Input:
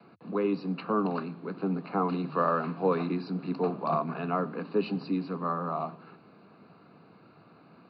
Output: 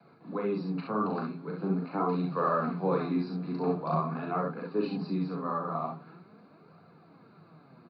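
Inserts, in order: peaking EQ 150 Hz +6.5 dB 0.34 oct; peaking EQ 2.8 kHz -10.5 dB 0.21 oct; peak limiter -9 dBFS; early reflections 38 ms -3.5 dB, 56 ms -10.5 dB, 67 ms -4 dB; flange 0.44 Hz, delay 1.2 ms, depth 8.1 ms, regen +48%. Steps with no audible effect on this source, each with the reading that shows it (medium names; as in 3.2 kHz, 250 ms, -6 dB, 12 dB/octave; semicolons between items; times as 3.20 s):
peak limiter -9 dBFS: peak at its input -13.0 dBFS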